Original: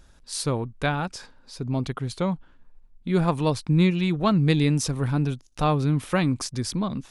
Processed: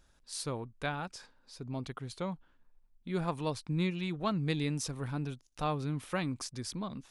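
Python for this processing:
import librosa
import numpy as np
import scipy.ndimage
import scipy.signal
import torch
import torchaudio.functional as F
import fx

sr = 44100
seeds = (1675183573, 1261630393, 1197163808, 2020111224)

y = fx.low_shelf(x, sr, hz=350.0, db=-4.5)
y = F.gain(torch.from_numpy(y), -9.0).numpy()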